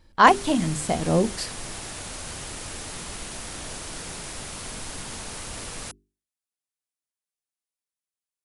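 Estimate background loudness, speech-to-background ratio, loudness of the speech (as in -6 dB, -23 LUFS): -35.0 LUFS, 13.0 dB, -22.0 LUFS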